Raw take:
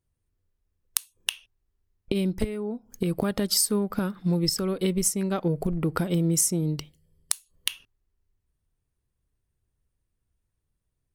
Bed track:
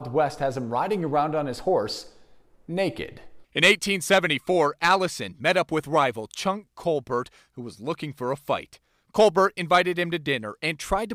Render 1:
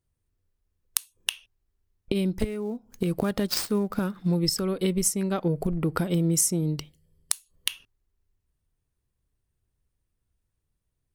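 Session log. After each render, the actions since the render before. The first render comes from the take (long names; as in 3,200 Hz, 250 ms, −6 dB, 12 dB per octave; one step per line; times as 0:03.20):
0:02.33–0:04.28: gap after every zero crossing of 0.051 ms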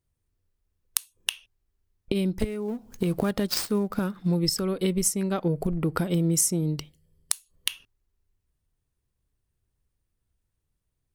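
0:02.68–0:03.31: mu-law and A-law mismatch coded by mu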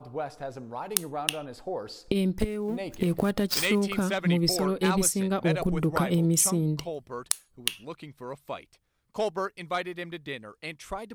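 mix in bed track −11 dB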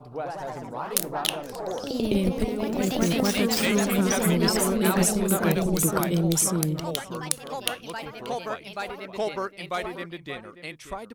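slap from a distant wall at 100 metres, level −12 dB
delay with pitch and tempo change per echo 114 ms, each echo +2 semitones, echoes 3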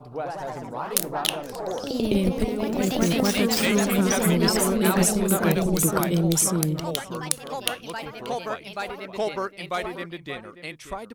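level +1.5 dB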